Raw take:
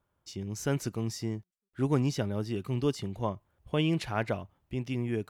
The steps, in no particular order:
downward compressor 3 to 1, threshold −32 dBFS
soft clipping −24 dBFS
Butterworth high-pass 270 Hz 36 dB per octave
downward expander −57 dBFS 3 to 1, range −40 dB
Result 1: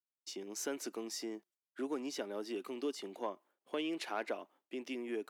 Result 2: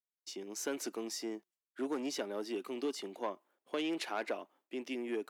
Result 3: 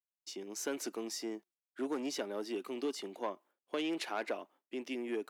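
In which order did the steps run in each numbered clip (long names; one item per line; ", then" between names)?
downward compressor, then soft clipping, then downward expander, then Butterworth high-pass
downward expander, then soft clipping, then Butterworth high-pass, then downward compressor
soft clipping, then Butterworth high-pass, then downward expander, then downward compressor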